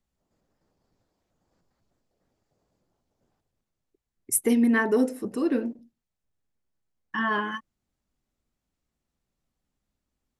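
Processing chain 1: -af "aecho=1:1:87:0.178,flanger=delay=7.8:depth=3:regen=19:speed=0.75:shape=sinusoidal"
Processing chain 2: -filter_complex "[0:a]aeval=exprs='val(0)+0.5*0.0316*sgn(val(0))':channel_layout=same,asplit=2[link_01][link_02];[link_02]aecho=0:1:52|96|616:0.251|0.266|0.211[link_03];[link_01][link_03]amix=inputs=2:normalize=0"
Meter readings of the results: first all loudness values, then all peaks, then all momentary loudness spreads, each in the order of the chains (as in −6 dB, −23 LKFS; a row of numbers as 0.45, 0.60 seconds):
−30.0, −29.0 LKFS; −12.5, −8.5 dBFS; 12, 16 LU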